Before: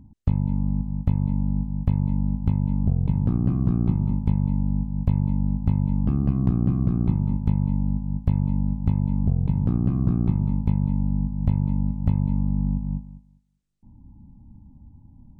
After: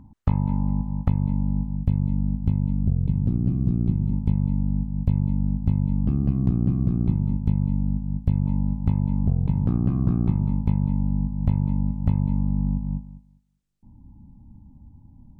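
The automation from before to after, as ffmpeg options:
ffmpeg -i in.wav -af "asetnsamples=nb_out_samples=441:pad=0,asendcmd='1.08 equalizer g 1.5;1.76 equalizer g -8;2.71 equalizer g -14.5;4.13 equalizer g -6.5;8.46 equalizer g 1',equalizer=frequency=1200:width_type=o:width=1.8:gain=11" out.wav

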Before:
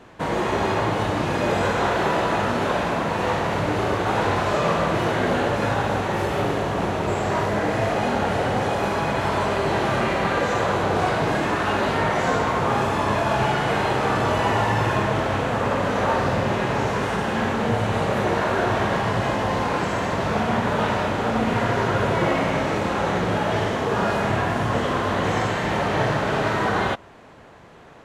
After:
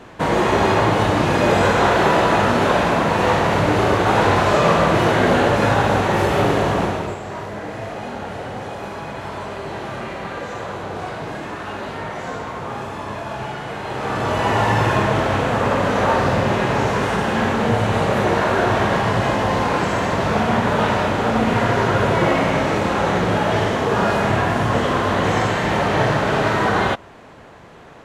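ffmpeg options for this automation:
ffmpeg -i in.wav -af "volume=17dB,afade=type=out:start_time=6.7:duration=0.48:silence=0.223872,afade=type=in:start_time=13.82:duration=0.88:silence=0.281838" out.wav

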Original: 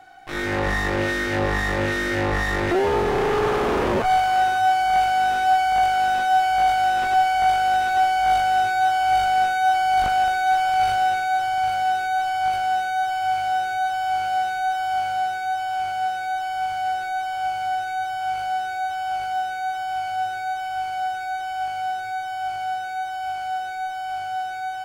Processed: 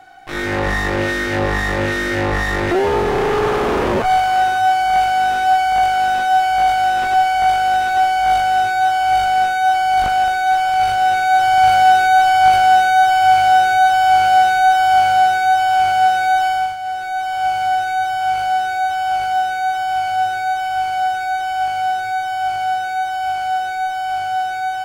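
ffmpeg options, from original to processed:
ffmpeg -i in.wav -af "volume=20dB,afade=type=in:start_time=10.96:duration=0.73:silence=0.446684,afade=type=out:start_time=16.46:duration=0.31:silence=0.237137,afade=type=in:start_time=16.77:duration=0.75:silence=0.354813" out.wav

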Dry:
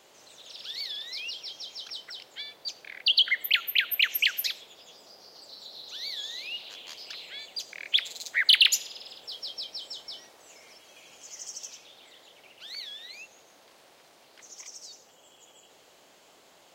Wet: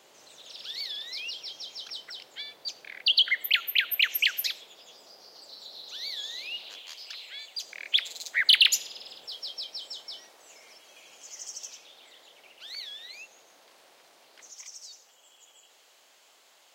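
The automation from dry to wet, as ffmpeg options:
ffmpeg -i in.wav -af "asetnsamples=nb_out_samples=441:pad=0,asendcmd='3.21 highpass f 240;6.79 highpass f 970;7.62 highpass f 340;8.4 highpass f 100;9.26 highpass f 370;14.5 highpass f 1200',highpass=frequency=110:poles=1" out.wav

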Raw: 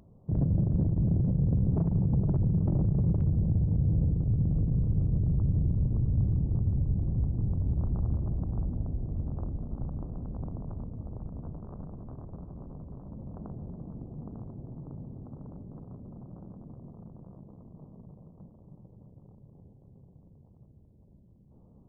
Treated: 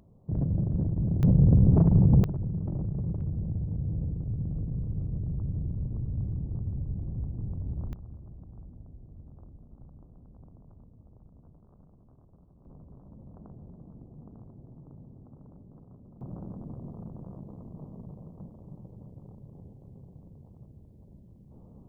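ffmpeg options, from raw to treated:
ffmpeg -i in.wav -af "asetnsamples=nb_out_samples=441:pad=0,asendcmd='1.23 volume volume 7dB;2.24 volume volume -5.5dB;7.93 volume volume -15.5dB;12.65 volume volume -7dB;16.21 volume volume 5.5dB',volume=-1.5dB" out.wav

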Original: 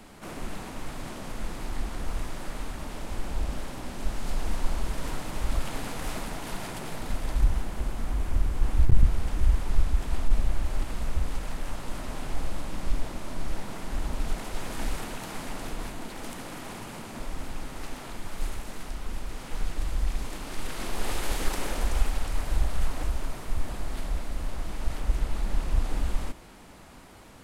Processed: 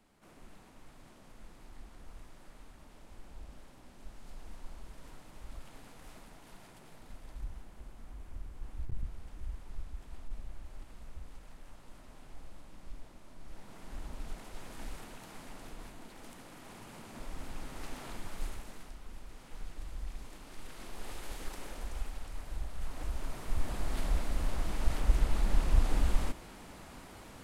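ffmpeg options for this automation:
ffmpeg -i in.wav -af "volume=8.5dB,afade=type=in:start_time=13.4:duration=0.52:silence=0.473151,afade=type=in:start_time=16.56:duration=1.56:silence=0.398107,afade=type=out:start_time=18.12:duration=0.86:silence=0.354813,afade=type=in:start_time=22.76:duration=1.32:silence=0.223872" out.wav

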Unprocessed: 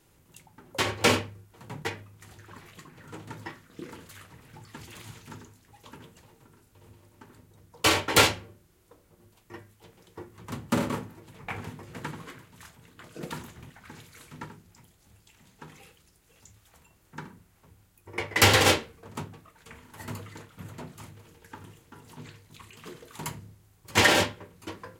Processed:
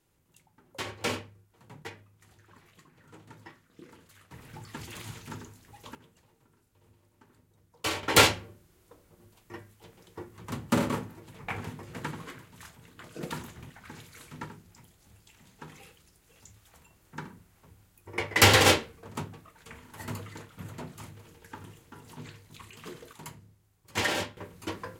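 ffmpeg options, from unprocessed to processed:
ffmpeg -i in.wav -af "asetnsamples=nb_out_samples=441:pad=0,asendcmd='4.31 volume volume 3dB;5.95 volume volume -9dB;8.03 volume volume 0.5dB;23.13 volume volume -8.5dB;24.37 volume volume 3.5dB',volume=-9.5dB" out.wav

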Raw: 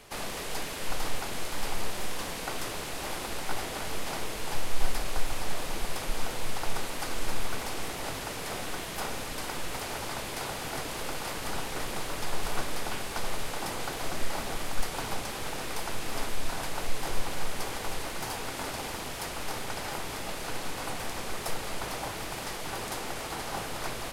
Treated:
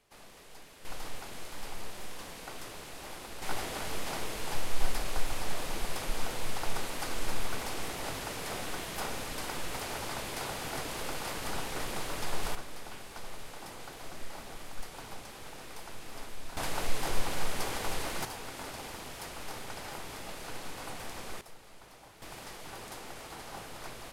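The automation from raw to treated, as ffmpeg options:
ffmpeg -i in.wav -af "asetnsamples=nb_out_samples=441:pad=0,asendcmd='0.85 volume volume -9dB;3.42 volume volume -2dB;12.55 volume volume -11dB;16.57 volume volume 0dB;18.25 volume volume -6.5dB;21.41 volume volume -19dB;22.22 volume volume -9dB',volume=-17.5dB" out.wav

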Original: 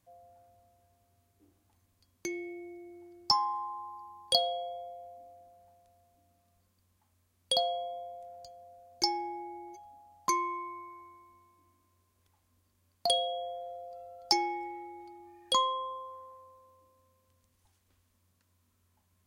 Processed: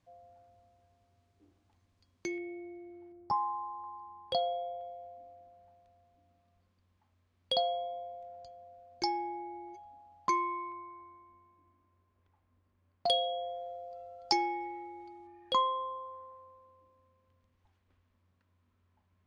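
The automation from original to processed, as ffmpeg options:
ffmpeg -i in.wav -af "asetnsamples=nb_out_samples=441:pad=0,asendcmd='2.38 lowpass f 2500;3.12 lowpass f 1100;3.84 lowpass f 2000;4.81 lowpass f 3500;10.72 lowpass f 2000;13.06 lowpass f 4800;15.27 lowpass f 2600',lowpass=5000" out.wav

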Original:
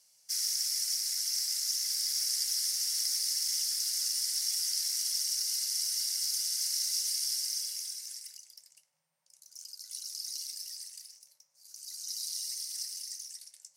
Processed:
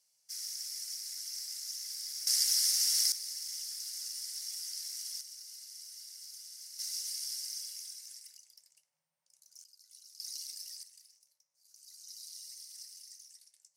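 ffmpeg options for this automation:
ffmpeg -i in.wav -af "asetnsamples=nb_out_samples=441:pad=0,asendcmd='2.27 volume volume 3dB;3.12 volume volume -9dB;5.21 volume volume -16.5dB;6.79 volume volume -6.5dB;9.64 volume volume -15dB;10.2 volume volume -3.5dB;10.83 volume volume -11dB',volume=-9dB" out.wav

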